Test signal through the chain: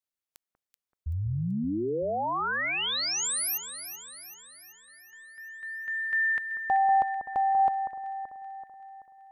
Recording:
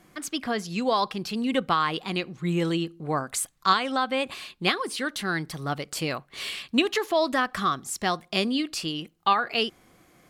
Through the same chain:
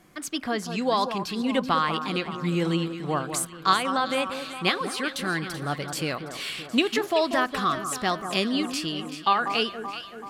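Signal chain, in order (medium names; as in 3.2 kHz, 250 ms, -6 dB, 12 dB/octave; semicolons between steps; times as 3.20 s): echo whose repeats swap between lows and highs 191 ms, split 1.5 kHz, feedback 73%, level -8.5 dB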